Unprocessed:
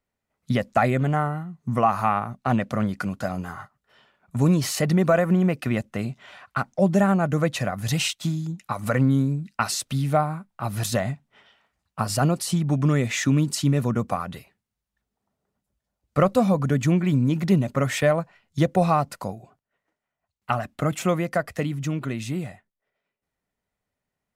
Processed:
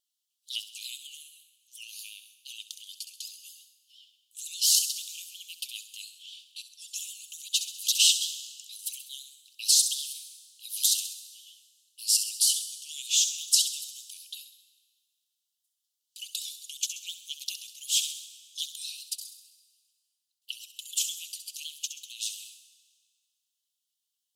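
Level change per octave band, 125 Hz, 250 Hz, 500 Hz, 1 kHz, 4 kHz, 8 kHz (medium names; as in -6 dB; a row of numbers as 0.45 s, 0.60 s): under -40 dB, under -40 dB, under -40 dB, under -40 dB, +7.5 dB, +8.5 dB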